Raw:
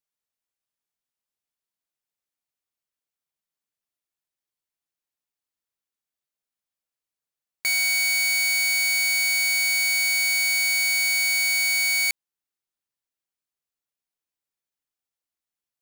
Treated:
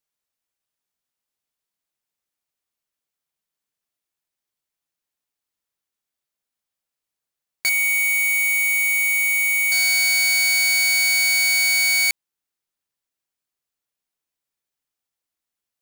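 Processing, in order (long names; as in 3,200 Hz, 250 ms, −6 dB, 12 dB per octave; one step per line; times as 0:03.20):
0:07.69–0:09.72: phaser with its sweep stopped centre 1,000 Hz, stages 8
level +4 dB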